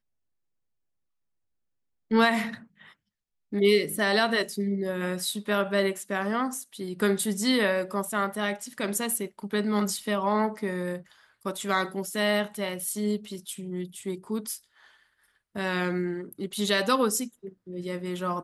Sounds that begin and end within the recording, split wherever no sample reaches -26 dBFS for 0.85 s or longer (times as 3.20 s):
2.11–2.49 s
3.53–14.53 s